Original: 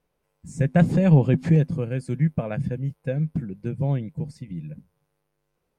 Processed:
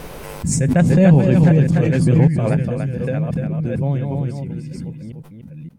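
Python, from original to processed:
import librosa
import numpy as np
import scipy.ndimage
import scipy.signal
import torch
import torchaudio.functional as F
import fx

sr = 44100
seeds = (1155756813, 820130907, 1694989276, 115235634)

p1 = fx.reverse_delay(x, sr, ms=569, wet_db=-4)
p2 = p1 + fx.echo_single(p1, sr, ms=294, db=-5.5, dry=0)
p3 = fx.pre_swell(p2, sr, db_per_s=26.0)
y = F.gain(torch.from_numpy(p3), 2.0).numpy()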